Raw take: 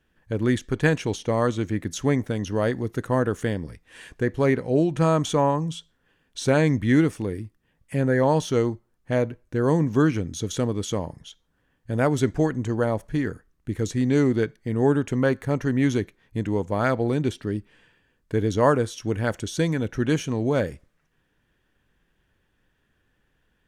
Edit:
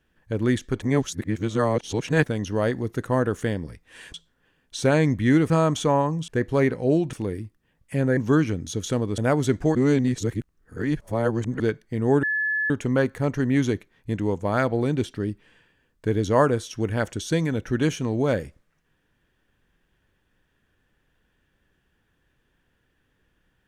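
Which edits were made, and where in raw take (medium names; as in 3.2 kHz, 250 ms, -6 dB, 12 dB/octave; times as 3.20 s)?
0.82–2.24 s: reverse
4.14–4.99 s: swap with 5.77–7.13 s
8.17–9.84 s: delete
10.85–11.92 s: delete
12.49–14.34 s: reverse
14.97 s: add tone 1.72 kHz -21.5 dBFS 0.47 s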